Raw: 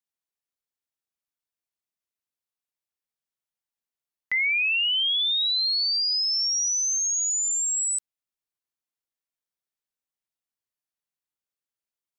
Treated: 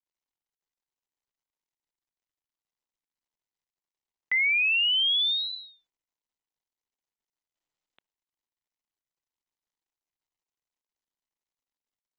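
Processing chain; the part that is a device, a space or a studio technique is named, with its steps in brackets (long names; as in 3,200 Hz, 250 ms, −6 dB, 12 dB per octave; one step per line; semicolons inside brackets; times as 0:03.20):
0:07.55–0:07.96: comb filter 6.9 ms, depth 91%
Bluetooth headset (high-pass filter 230 Hz 6 dB per octave; downsampling to 8,000 Hz; SBC 64 kbit/s 16,000 Hz)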